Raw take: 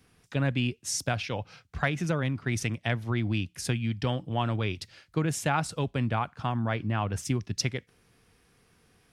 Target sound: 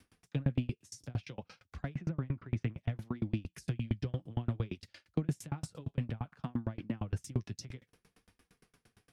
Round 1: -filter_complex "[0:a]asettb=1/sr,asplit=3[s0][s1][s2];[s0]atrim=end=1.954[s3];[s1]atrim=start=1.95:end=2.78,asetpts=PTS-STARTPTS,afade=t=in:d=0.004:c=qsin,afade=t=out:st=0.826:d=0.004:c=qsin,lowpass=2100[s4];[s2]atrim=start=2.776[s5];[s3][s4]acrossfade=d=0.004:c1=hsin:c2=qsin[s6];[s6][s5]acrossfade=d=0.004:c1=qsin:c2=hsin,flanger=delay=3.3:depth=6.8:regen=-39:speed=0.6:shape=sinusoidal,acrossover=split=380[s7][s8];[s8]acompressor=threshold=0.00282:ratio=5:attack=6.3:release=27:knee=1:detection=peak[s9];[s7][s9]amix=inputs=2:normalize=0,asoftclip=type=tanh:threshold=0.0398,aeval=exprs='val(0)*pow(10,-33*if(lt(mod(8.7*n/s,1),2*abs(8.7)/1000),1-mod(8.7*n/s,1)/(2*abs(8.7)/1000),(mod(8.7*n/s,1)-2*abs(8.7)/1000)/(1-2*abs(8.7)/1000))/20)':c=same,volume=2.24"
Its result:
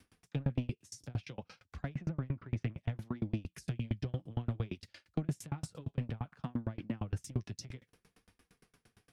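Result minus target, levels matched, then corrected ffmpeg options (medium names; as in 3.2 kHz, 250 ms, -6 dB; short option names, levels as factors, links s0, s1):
saturation: distortion +10 dB
-filter_complex "[0:a]asettb=1/sr,asplit=3[s0][s1][s2];[s0]atrim=end=1.954[s3];[s1]atrim=start=1.95:end=2.78,asetpts=PTS-STARTPTS,afade=t=in:d=0.004:c=qsin,afade=t=out:st=0.826:d=0.004:c=qsin,lowpass=2100[s4];[s2]atrim=start=2.776[s5];[s3][s4]acrossfade=d=0.004:c1=hsin:c2=qsin[s6];[s6][s5]acrossfade=d=0.004:c1=qsin:c2=hsin,flanger=delay=3.3:depth=6.8:regen=-39:speed=0.6:shape=sinusoidal,acrossover=split=380[s7][s8];[s8]acompressor=threshold=0.00282:ratio=5:attack=6.3:release=27:knee=1:detection=peak[s9];[s7][s9]amix=inputs=2:normalize=0,asoftclip=type=tanh:threshold=0.0841,aeval=exprs='val(0)*pow(10,-33*if(lt(mod(8.7*n/s,1),2*abs(8.7)/1000),1-mod(8.7*n/s,1)/(2*abs(8.7)/1000),(mod(8.7*n/s,1)-2*abs(8.7)/1000)/(1-2*abs(8.7)/1000))/20)':c=same,volume=2.24"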